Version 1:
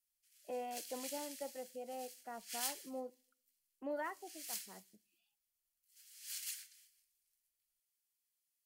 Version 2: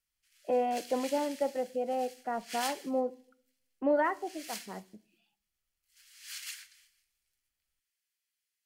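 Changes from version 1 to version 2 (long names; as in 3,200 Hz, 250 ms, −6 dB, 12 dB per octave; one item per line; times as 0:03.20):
speech: send +8.5 dB
master: remove first-order pre-emphasis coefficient 0.8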